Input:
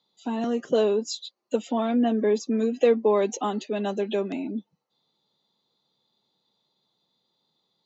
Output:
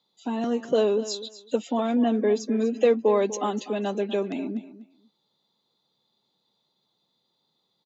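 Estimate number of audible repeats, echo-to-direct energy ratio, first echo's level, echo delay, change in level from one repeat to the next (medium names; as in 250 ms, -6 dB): 2, -15.0 dB, -15.0 dB, 246 ms, -15.5 dB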